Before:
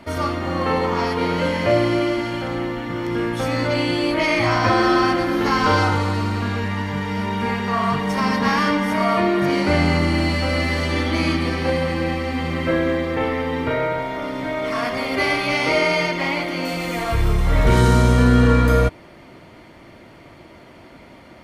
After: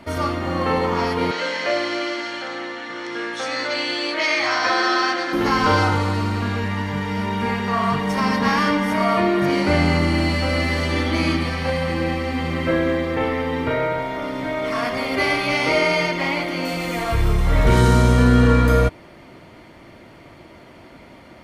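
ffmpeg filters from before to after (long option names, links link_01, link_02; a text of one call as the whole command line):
ffmpeg -i in.wav -filter_complex "[0:a]asettb=1/sr,asplit=3[link_01][link_02][link_03];[link_01]atrim=end=1.314[link_04];[link_02]atrim=start=1.31:end=5.33,asetpts=PTS-STARTPTS,afade=type=in:duration=0.004:curve=qsin,afade=type=out:start_time=4.016:duration=0.004:curve=qsin,highpass=490,equalizer=frequency=580:width_type=q:width=4:gain=-3,equalizer=frequency=940:width_type=q:width=4:gain=-4,equalizer=frequency=1700:width_type=q:width=4:gain=4,equalizer=frequency=4000:width_type=q:width=4:gain=6,equalizer=frequency=5900:width_type=q:width=4:gain=5,lowpass=frequency=8500:width=0.5412,lowpass=frequency=8500:width=1.3066[link_05];[link_03]atrim=start=5.326[link_06];[link_04][link_05]acrossfade=duration=0.004:curve1=hsin:curve2=qsin[link_07];[link_07][link_06]acrossfade=duration=0.004:curve1=qsin:curve2=hsin,asettb=1/sr,asplit=3[link_08][link_09][link_10];[link_08]atrim=end=11.434[link_11];[link_09]atrim=start=11.43:end=11.88,asetpts=PTS-STARTPTS,afade=type=in:duration=0.004:curve=qsin,afade=type=out:start_time=0.446:duration=0.004:curve=qsin,equalizer=frequency=340:width_type=o:width=0.49:gain=-14[link_12];[link_10]atrim=start=11.876[link_13];[link_11][link_12]acrossfade=duration=0.004:curve1=hsin:curve2=qsin[link_14];[link_14][link_13]acrossfade=duration=0.004:curve1=qsin:curve2=hsin" out.wav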